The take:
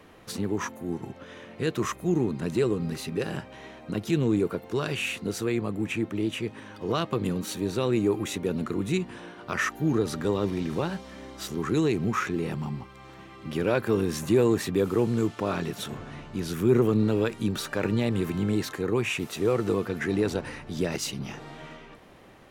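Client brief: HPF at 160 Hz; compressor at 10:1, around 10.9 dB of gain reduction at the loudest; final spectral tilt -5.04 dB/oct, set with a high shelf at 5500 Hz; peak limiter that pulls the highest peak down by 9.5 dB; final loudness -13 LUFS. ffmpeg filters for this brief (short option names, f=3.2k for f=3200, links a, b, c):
-af "highpass=160,highshelf=f=5.5k:g=-5.5,acompressor=threshold=-28dB:ratio=10,volume=24dB,alimiter=limit=-3dB:level=0:latency=1"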